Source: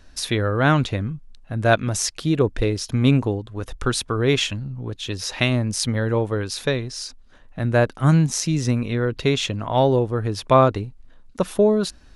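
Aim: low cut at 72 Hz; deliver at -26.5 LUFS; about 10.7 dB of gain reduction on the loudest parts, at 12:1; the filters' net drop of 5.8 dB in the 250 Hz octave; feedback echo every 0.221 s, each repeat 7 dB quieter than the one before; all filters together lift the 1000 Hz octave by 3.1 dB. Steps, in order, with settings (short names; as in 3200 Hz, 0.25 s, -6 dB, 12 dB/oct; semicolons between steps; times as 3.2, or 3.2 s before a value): HPF 72 Hz; bell 250 Hz -8.5 dB; bell 1000 Hz +4.5 dB; compressor 12:1, threshold -18 dBFS; feedback echo 0.221 s, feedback 45%, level -7 dB; gain -1.5 dB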